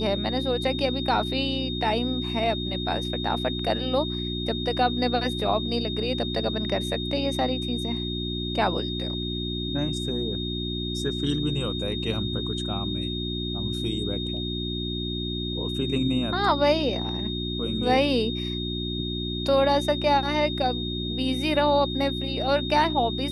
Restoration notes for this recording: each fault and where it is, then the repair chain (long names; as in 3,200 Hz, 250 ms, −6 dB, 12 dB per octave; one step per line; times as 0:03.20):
mains hum 60 Hz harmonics 6 −31 dBFS
whistle 3,700 Hz −32 dBFS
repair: notch filter 3,700 Hz, Q 30
hum removal 60 Hz, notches 6